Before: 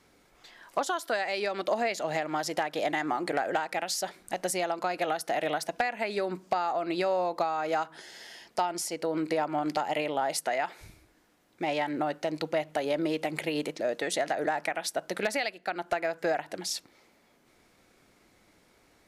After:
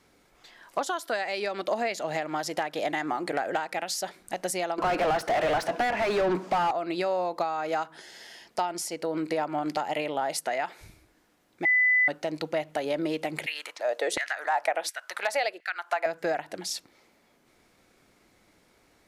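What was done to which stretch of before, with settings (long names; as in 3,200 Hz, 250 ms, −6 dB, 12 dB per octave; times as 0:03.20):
0:04.78–0:06.71: mid-hump overdrive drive 30 dB, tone 1,100 Hz, clips at −16.5 dBFS
0:11.65–0:12.08: beep over 2,000 Hz −18.5 dBFS
0:13.46–0:16.06: auto-filter high-pass saw down 1.4 Hz 370–2,100 Hz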